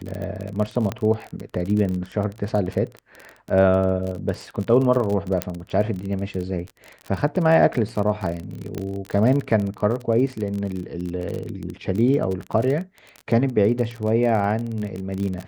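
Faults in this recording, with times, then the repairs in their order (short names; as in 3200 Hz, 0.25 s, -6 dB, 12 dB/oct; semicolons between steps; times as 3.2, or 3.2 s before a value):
crackle 31/s -26 dBFS
0.92 pop -12 dBFS
5.42 pop -6 dBFS
8.78 pop -15 dBFS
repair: de-click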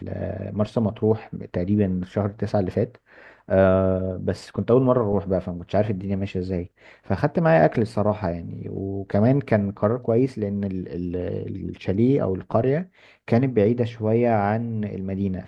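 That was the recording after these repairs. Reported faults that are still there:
none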